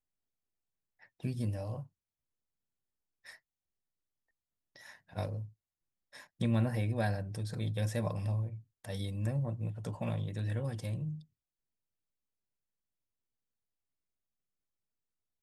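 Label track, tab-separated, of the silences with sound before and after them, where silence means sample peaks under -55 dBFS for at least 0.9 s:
1.870000	3.250000	silence
3.360000	4.760000	silence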